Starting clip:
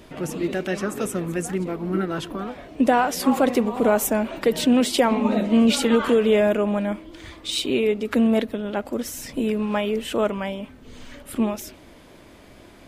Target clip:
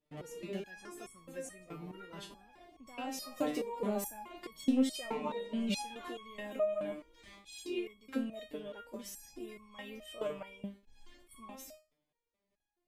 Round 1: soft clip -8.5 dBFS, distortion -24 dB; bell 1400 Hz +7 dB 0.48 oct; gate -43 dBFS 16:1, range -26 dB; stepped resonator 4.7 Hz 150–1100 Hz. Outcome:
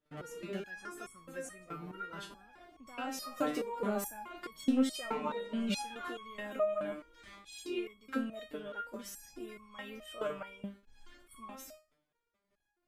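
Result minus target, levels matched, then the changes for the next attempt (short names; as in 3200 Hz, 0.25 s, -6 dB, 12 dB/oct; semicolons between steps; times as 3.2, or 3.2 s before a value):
1000 Hz band +2.5 dB
change: bell 1400 Hz -4.5 dB 0.48 oct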